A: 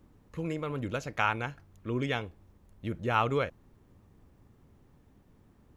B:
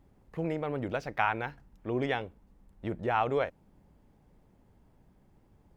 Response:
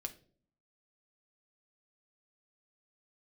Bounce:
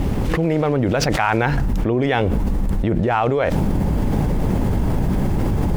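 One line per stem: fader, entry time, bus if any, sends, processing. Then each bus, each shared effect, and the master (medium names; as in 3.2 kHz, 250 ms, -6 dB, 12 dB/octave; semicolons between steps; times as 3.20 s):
-11.0 dB, 0.00 s, no send, phase randomisation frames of 200 ms; high-pass 230 Hz; delay time shaken by noise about 1.9 kHz, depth 0.16 ms; auto duck -15 dB, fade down 1.70 s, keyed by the second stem
-2.5 dB, 0.00 s, no send, level rider gain up to 8 dB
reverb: none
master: bass shelf 390 Hz +5 dB; level flattener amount 100%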